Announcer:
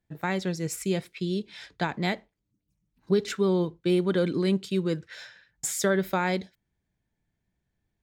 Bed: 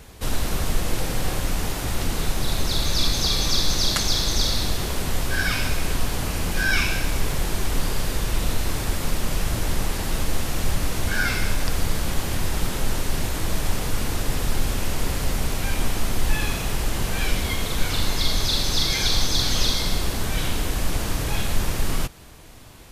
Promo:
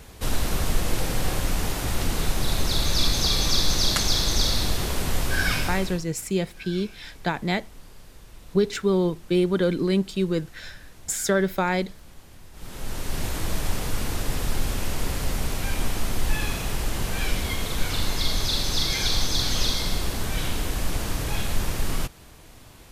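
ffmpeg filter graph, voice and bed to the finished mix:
-filter_complex "[0:a]adelay=5450,volume=2.5dB[a];[1:a]volume=20dB,afade=t=out:st=5.52:d=0.52:silence=0.0749894,afade=t=in:st=12.53:d=0.75:silence=0.0944061[b];[a][b]amix=inputs=2:normalize=0"

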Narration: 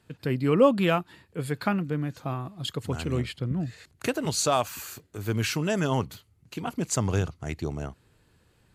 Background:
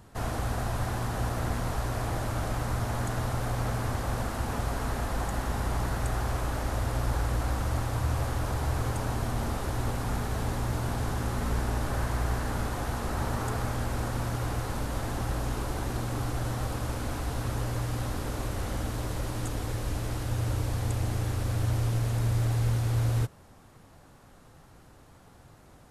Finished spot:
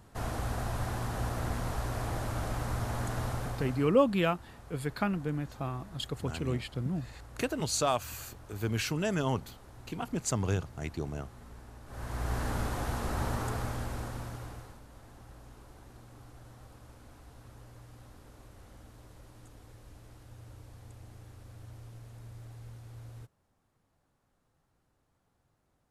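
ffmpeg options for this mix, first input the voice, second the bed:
-filter_complex "[0:a]adelay=3350,volume=-4.5dB[a];[1:a]volume=15.5dB,afade=t=out:st=3.28:d=0.68:silence=0.133352,afade=t=in:st=11.86:d=0.57:silence=0.112202,afade=t=out:st=13.27:d=1.53:silence=0.112202[b];[a][b]amix=inputs=2:normalize=0"

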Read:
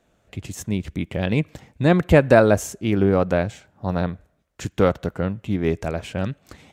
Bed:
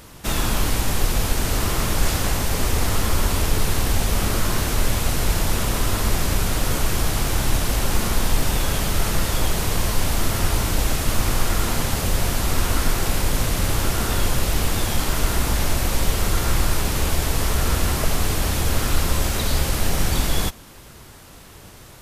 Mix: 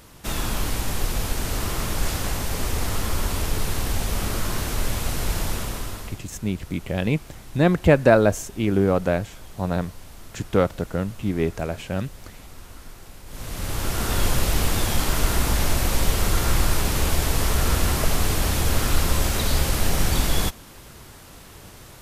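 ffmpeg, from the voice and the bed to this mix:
-filter_complex "[0:a]adelay=5750,volume=-1.5dB[a];[1:a]volume=17dB,afade=t=out:st=5.44:d=0.77:silence=0.133352,afade=t=in:st=13.26:d=1:silence=0.0841395[b];[a][b]amix=inputs=2:normalize=0"

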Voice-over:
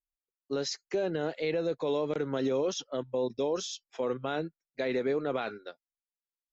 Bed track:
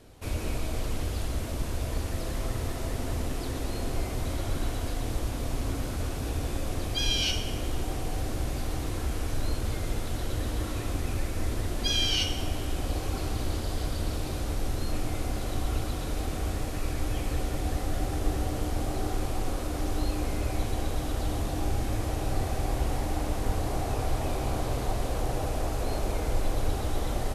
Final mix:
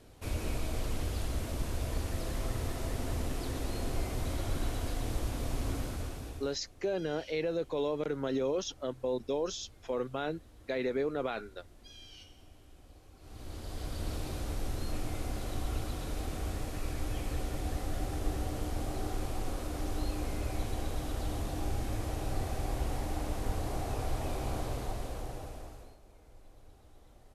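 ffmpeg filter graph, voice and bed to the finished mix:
-filter_complex "[0:a]adelay=5900,volume=-2.5dB[a];[1:a]volume=17dB,afade=t=out:st=5.75:d=0.84:silence=0.0749894,afade=t=in:st=13.19:d=0.93:silence=0.0944061,afade=t=out:st=24.57:d=1.4:silence=0.0668344[b];[a][b]amix=inputs=2:normalize=0"

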